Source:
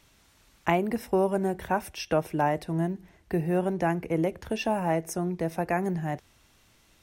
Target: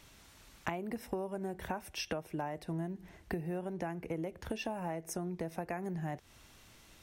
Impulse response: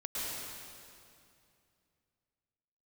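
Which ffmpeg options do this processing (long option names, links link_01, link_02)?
-af "acompressor=threshold=-37dB:ratio=12,volume=2.5dB"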